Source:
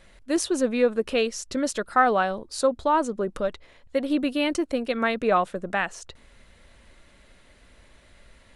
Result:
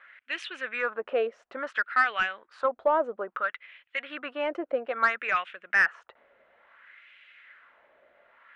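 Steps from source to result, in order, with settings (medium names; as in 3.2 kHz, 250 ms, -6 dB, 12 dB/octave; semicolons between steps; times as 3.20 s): high-order bell 2.1 kHz +10 dB; LFO band-pass sine 0.59 Hz 580–2700 Hz; overdrive pedal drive 12 dB, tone 1.1 kHz, clips at -7.5 dBFS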